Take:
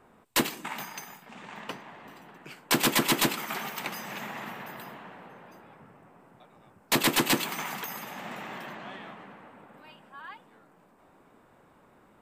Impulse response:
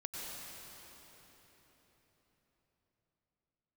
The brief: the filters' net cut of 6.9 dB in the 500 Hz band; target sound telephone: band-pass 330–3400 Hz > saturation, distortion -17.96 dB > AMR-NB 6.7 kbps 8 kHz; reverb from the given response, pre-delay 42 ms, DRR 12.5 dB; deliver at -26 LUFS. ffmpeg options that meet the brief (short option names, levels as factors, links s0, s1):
-filter_complex "[0:a]equalizer=f=500:t=o:g=-8,asplit=2[s0][s1];[1:a]atrim=start_sample=2205,adelay=42[s2];[s1][s2]afir=irnorm=-1:irlink=0,volume=0.224[s3];[s0][s3]amix=inputs=2:normalize=0,highpass=330,lowpass=3400,asoftclip=threshold=0.106,volume=5.31" -ar 8000 -c:a libopencore_amrnb -b:a 6700